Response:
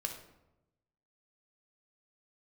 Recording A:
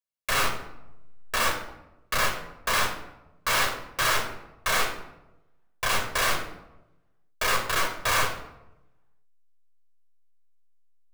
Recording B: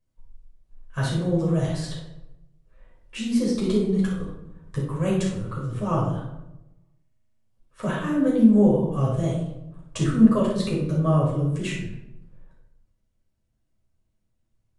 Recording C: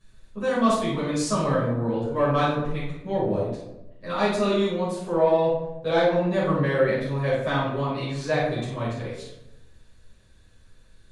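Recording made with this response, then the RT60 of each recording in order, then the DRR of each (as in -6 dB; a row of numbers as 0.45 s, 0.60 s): A; 0.95 s, 0.95 s, 0.95 s; 3.0 dB, -5.5 dB, -11.5 dB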